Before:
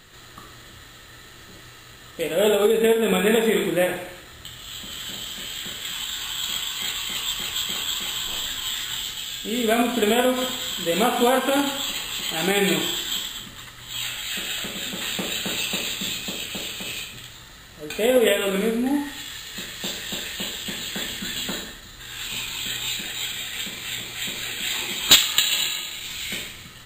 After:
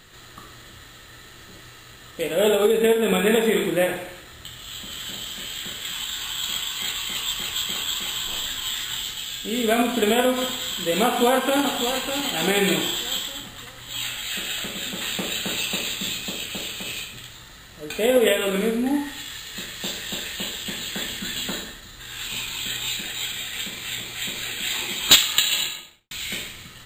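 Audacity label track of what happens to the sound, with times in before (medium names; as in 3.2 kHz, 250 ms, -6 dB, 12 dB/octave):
11.040000	12.100000	echo throw 600 ms, feedback 40%, level -8 dB
25.560000	26.110000	studio fade out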